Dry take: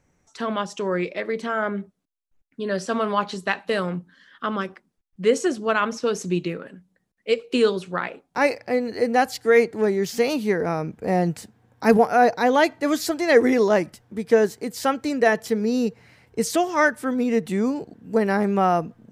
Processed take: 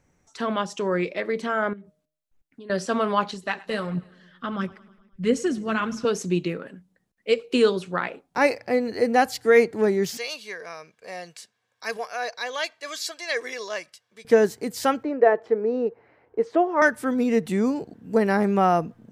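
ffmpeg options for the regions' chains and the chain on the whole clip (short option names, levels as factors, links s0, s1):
-filter_complex "[0:a]asettb=1/sr,asplit=3[s0][s1][s2];[s0]atrim=end=1.734[s3];[s1]atrim=start=1.73:end=2.7,asetpts=PTS-STARTPTS,afade=t=in:d=0.004:c=qsin,afade=t=out:st=0.966:d=0.004:c=qsin,bandreject=f=153.7:t=h:w=4,bandreject=f=307.4:t=h:w=4,bandreject=f=461.1:t=h:w=4,bandreject=f=614.8:t=h:w=4,acompressor=threshold=0.01:ratio=6:attack=3.2:release=140:knee=1:detection=peak[s4];[s2]atrim=start=2.696[s5];[s3][s4]acrossfade=d=0.004:c1=hsin:c2=qsin[s6];[s6][s5]acrossfade=d=0.004:c1=qsin:c2=hsin,asettb=1/sr,asplit=3[s7][s8][s9];[s7]atrim=end=3.314[s10];[s8]atrim=start=3.31:end=6.05,asetpts=PTS-STARTPTS,afade=t=in:d=0.004:c=qsin,afade=t=out:st=2.736:d=0.004:c=qsin,aecho=1:1:105|210|315|420|525:0.0891|0.0526|0.031|0.0183|0.0108,atrim=end_sample=120834,flanger=delay=0:depth=6.7:regen=40:speed=1.5:shape=triangular,asubboost=boost=7:cutoff=220[s11];[s9]atrim=start=6.046[s12];[s10][s11]acrossfade=d=0.004:c1=hsin:c2=qsin[s13];[s13][s12]acrossfade=d=0.004:c1=qsin:c2=hsin,asettb=1/sr,asplit=3[s14][s15][s16];[s14]atrim=end=10.174[s17];[s15]atrim=start=10.17:end=14.25,asetpts=PTS-STARTPTS,afade=t=in:d=0.004:c=qsin,afade=t=out:st=4.076:d=0.004:c=qsin,bandpass=f=4300:t=q:w=0.82,aecho=1:1:1.8:0.46,atrim=end_sample=179928[s18];[s16]atrim=start=14.246[s19];[s17][s18]acrossfade=d=0.004:c1=hsin:c2=qsin[s20];[s20][s19]acrossfade=d=0.004:c1=qsin:c2=hsin,asettb=1/sr,asplit=3[s21][s22][s23];[s21]atrim=end=15.034[s24];[s22]atrim=start=15.03:end=16.82,asetpts=PTS-STARTPTS,afade=t=in:d=0.004:c=qsin,afade=t=out:st=1.786:d=0.004:c=qsin,lowpass=1300,lowshelf=f=260:t=q:w=1.5:g=-12[s25];[s23]atrim=start=16.816[s26];[s24][s25]acrossfade=d=0.004:c1=hsin:c2=qsin[s27];[s27][s26]acrossfade=d=0.004:c1=qsin:c2=hsin"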